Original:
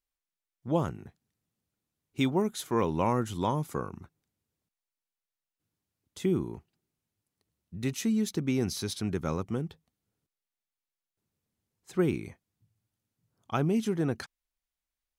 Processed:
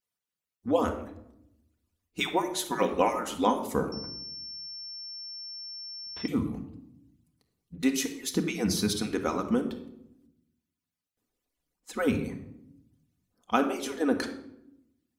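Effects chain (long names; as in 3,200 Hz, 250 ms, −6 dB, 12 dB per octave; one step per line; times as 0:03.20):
harmonic-percussive split with one part muted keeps percussive
convolution reverb RT60 0.80 s, pre-delay 4 ms, DRR 4 dB
0:03.92–0:06.28: switching amplifier with a slow clock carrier 5,400 Hz
level +5 dB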